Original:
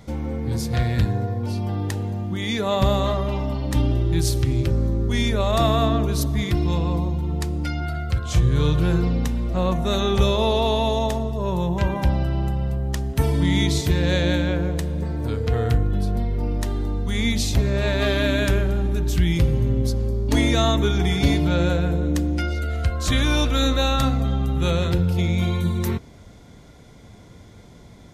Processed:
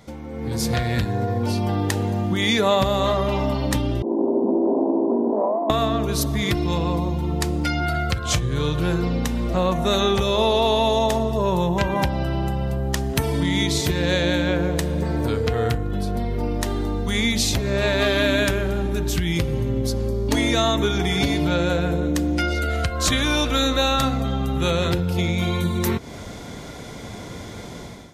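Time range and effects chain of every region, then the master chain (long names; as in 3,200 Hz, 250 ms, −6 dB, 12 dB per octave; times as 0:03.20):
0:04.02–0:05.70: lower of the sound and its delayed copy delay 3 ms + Chebyshev band-pass filter 210–1,000 Hz, order 5 + compressor whose output falls as the input rises −29 dBFS
whole clip: downward compressor, threshold −29 dBFS; low-shelf EQ 160 Hz −9.5 dB; automatic gain control gain up to 14.5 dB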